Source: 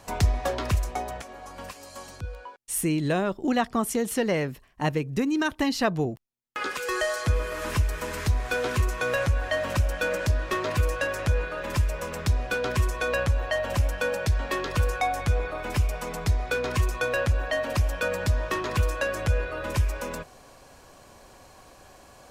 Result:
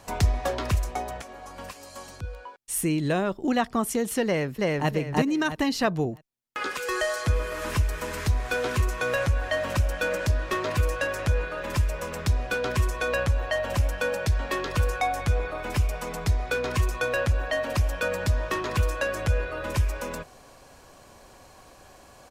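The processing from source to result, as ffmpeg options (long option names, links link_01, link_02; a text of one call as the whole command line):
ffmpeg -i in.wav -filter_complex "[0:a]asplit=2[link_01][link_02];[link_02]afade=type=in:start_time=4.25:duration=0.01,afade=type=out:start_time=4.89:duration=0.01,aecho=0:1:330|660|990|1320:1|0.3|0.09|0.027[link_03];[link_01][link_03]amix=inputs=2:normalize=0" out.wav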